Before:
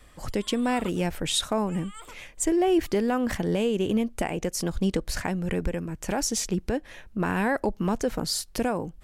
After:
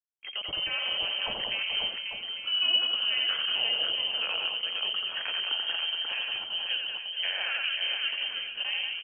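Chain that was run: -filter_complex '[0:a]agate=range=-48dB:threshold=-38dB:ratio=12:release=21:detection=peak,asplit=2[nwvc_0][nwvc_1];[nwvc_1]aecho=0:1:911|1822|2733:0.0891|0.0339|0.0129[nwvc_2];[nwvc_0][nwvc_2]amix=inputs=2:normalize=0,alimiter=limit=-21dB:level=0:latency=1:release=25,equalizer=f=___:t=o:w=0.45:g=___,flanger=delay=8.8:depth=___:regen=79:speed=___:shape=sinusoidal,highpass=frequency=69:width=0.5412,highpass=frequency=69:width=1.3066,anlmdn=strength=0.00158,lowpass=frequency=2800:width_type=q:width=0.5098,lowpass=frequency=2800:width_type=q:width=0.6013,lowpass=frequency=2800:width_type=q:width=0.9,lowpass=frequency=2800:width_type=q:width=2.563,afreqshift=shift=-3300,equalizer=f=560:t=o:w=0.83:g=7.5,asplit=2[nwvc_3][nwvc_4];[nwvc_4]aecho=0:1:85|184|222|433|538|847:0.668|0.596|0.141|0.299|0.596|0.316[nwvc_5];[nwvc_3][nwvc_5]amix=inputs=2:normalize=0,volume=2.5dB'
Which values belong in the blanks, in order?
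220, -5, 5.6, 0.81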